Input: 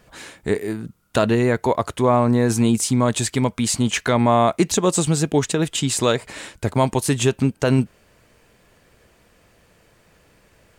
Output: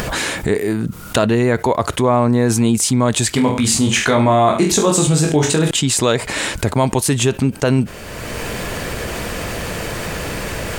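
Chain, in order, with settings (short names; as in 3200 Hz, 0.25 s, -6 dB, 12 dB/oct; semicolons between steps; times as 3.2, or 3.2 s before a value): upward compressor, threshold -21 dBFS; 3.32–5.71 reverse bouncing-ball echo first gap 20 ms, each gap 1.15×, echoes 5; fast leveller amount 50%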